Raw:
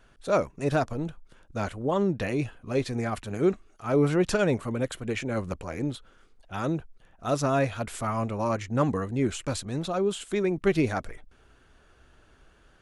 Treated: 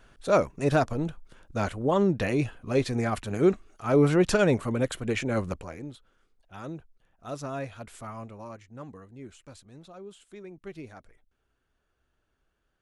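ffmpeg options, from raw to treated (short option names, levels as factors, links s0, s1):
-af "volume=1.26,afade=t=out:st=5.41:d=0.41:silence=0.251189,afade=t=out:st=8.03:d=0.64:silence=0.398107"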